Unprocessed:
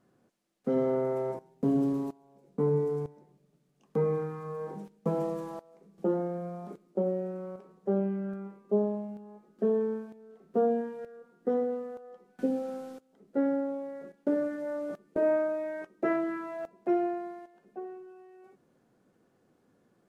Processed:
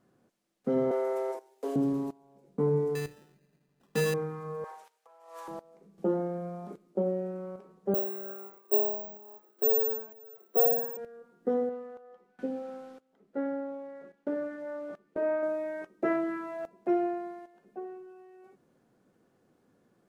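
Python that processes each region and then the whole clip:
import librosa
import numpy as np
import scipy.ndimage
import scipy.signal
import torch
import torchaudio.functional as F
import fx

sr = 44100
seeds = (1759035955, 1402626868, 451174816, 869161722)

y = fx.chain(x, sr, fx.steep_highpass(hz=360.0, slope=36),
    fx.high_shelf(hz=2200.0, db=8.5), at=(0.91, 1.76))
y = fx.chain(y, sr, fx.hum_notches(base_hz=60, count=9),
    fx.sample_hold(seeds[0], rate_hz=2200.0, jitter_pct=0), at=(2.95, 4.14))
y = fx.chain(y, sr, fx.highpass(hz=770.0, slope=24),
    fx.over_compress(threshold_db=-47.0, ratio=-0.5), at=(4.64, 5.48))
y = fx.chain(y, sr, fx.highpass(hz=340.0, slope=24),
    fx.resample_bad(factor=2, down='none', up='zero_stuff'), at=(7.94, 10.97))
y = fx.chain(y, sr, fx.lowpass(hz=1200.0, slope=6),
    fx.tilt_shelf(db=-7.0, hz=890.0), at=(11.69, 15.43))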